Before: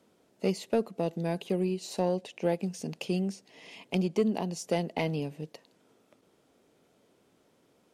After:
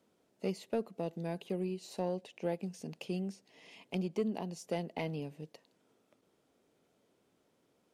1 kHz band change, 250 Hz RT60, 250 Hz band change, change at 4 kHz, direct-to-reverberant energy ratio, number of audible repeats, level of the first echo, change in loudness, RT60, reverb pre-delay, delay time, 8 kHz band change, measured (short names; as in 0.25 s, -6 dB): -7.0 dB, none, -7.0 dB, -8.0 dB, none, none, none, -7.0 dB, none, none, none, -9.5 dB